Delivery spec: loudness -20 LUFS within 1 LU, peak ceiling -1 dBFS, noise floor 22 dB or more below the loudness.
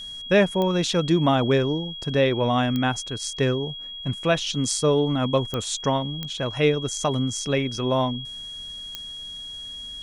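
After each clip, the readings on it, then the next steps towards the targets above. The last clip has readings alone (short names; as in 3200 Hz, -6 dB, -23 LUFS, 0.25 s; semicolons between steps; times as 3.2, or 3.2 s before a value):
clicks 5; steady tone 3300 Hz; tone level -34 dBFS; loudness -24.0 LUFS; peak -6.0 dBFS; loudness target -20.0 LUFS
-> de-click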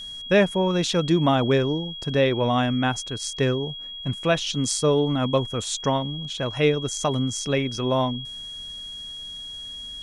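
clicks 0; steady tone 3300 Hz; tone level -34 dBFS
-> notch 3300 Hz, Q 30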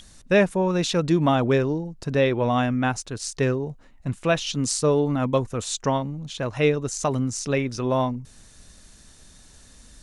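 steady tone none; loudness -23.5 LUFS; peak -6.5 dBFS; loudness target -20.0 LUFS
-> gain +3.5 dB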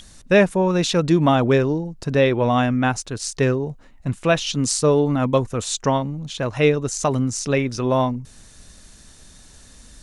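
loudness -20.0 LUFS; peak -3.0 dBFS; noise floor -47 dBFS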